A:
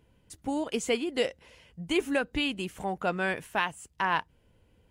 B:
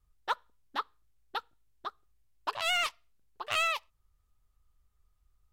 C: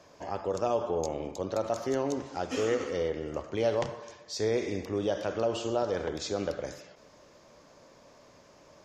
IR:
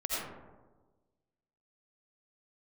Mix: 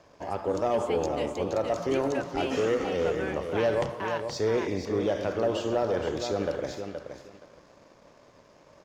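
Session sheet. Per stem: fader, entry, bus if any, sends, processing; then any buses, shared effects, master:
-11.0 dB, 0.00 s, no send, echo send -4.5 dB, none
mute
-0.5 dB, 0.00 s, no send, echo send -8.5 dB, none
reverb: none
echo: feedback delay 472 ms, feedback 21%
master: treble shelf 5.2 kHz -9 dB; waveshaping leveller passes 1

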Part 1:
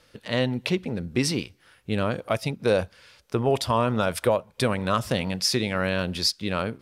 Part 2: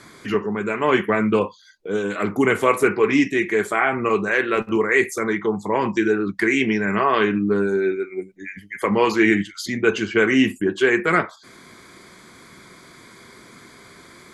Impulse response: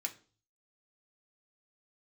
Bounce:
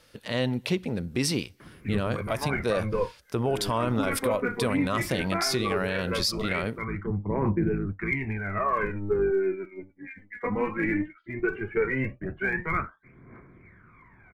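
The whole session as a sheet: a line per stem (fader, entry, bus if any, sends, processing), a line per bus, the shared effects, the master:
-0.5 dB, 0.00 s, no send, treble shelf 11 kHz +8 dB
-11.0 dB, 1.60 s, no send, octave divider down 1 oct, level -1 dB; Chebyshev low-pass 2.3 kHz, order 5; phaser 0.17 Hz, delay 4.2 ms, feedback 71%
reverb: none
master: peak limiter -16.5 dBFS, peak gain reduction 8.5 dB

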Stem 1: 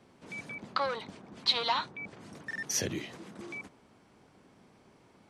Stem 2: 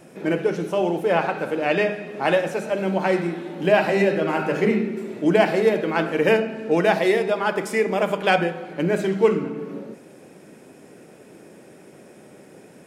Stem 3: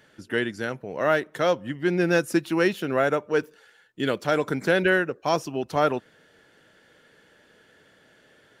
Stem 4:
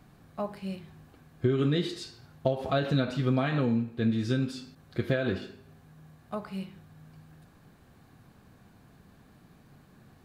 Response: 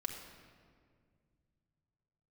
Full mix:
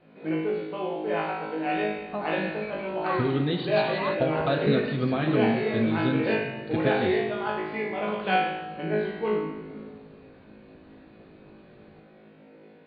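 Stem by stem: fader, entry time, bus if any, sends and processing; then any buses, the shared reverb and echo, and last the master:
-3.5 dB, 2.30 s, no send, peak limiter -26 dBFS, peak gain reduction 11 dB; peaking EQ 1.1 kHz +13 dB 0.42 oct
+2.0 dB, 0.00 s, send -4.5 dB, feedback comb 53 Hz, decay 0.83 s, harmonics all, mix 100%
mute
-2.0 dB, 1.75 s, send -6 dB, none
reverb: on, RT60 2.0 s, pre-delay 4 ms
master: Chebyshev low-pass 4.5 kHz, order 8

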